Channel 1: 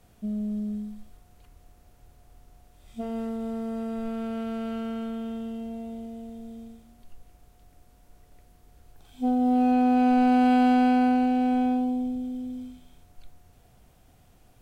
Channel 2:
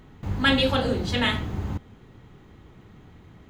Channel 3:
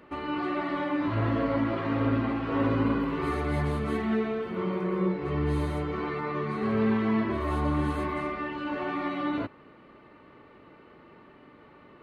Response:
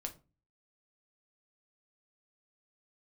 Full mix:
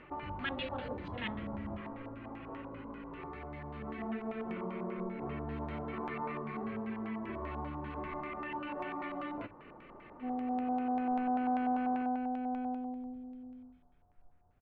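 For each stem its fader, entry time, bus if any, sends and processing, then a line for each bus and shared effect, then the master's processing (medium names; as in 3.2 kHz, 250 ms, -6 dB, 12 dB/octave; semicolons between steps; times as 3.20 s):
-14.5 dB, 1.00 s, no bus, no send, resonant high shelf 2 kHz -7.5 dB, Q 1.5
-15.5 dB, 0.00 s, bus A, send -12.5 dB, none
-4.5 dB, 0.00 s, bus A, send -7.5 dB, compression 6:1, threshold -33 dBFS, peak gain reduction 11.5 dB; auto duck -14 dB, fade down 0.35 s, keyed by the second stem
bus A: 0.0 dB, compression 2:1, threshold -45 dBFS, peak gain reduction 8.5 dB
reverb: on, RT60 0.30 s, pre-delay 6 ms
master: LFO low-pass square 5.1 Hz 890–2500 Hz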